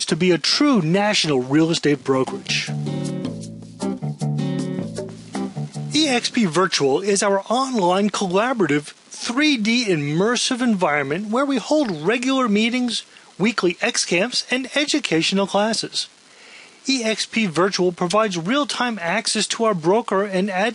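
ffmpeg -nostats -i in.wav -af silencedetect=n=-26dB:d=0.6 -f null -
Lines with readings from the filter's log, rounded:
silence_start: 16.04
silence_end: 16.86 | silence_duration: 0.82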